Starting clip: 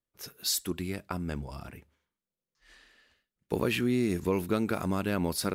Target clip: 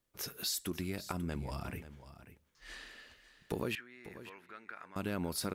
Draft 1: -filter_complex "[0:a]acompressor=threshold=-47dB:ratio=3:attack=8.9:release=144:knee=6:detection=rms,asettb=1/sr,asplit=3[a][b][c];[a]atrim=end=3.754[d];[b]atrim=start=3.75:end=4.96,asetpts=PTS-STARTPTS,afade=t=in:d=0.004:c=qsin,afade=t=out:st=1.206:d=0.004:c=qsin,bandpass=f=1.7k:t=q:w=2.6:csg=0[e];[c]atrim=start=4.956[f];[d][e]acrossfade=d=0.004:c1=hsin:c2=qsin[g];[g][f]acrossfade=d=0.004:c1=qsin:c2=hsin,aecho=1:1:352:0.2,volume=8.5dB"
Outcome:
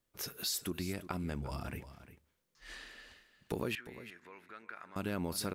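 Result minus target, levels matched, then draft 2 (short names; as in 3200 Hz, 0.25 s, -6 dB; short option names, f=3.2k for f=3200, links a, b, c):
echo 0.191 s early
-filter_complex "[0:a]acompressor=threshold=-47dB:ratio=3:attack=8.9:release=144:knee=6:detection=rms,asettb=1/sr,asplit=3[a][b][c];[a]atrim=end=3.754[d];[b]atrim=start=3.75:end=4.96,asetpts=PTS-STARTPTS,afade=t=in:d=0.004:c=qsin,afade=t=out:st=1.206:d=0.004:c=qsin,bandpass=f=1.7k:t=q:w=2.6:csg=0[e];[c]atrim=start=4.956[f];[d][e]acrossfade=d=0.004:c1=hsin:c2=qsin[g];[g][f]acrossfade=d=0.004:c1=qsin:c2=hsin,aecho=1:1:543:0.2,volume=8.5dB"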